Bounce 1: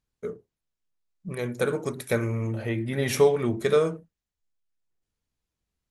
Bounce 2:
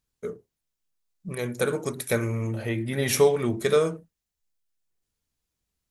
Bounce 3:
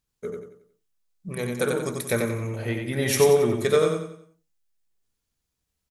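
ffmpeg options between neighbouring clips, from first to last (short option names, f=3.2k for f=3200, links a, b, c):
-af "highshelf=f=4.5k:g=7.5"
-af "aecho=1:1:91|182|273|364|455:0.631|0.24|0.0911|0.0346|0.0132"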